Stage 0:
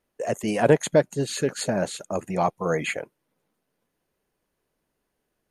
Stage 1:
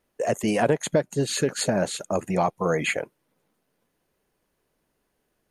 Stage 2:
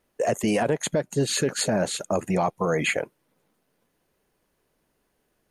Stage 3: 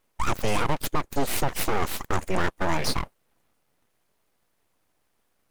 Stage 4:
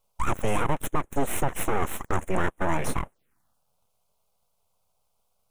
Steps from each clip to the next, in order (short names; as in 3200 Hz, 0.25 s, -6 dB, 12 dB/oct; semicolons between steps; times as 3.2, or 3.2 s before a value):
compressor 4:1, threshold -22 dBFS, peak gain reduction 9.5 dB; gain +3.5 dB
limiter -15.5 dBFS, peak gain reduction 7.5 dB; gain +2 dB
full-wave rectifier; gain +1.5 dB
envelope phaser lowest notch 300 Hz, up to 4700 Hz, full sweep at -25.5 dBFS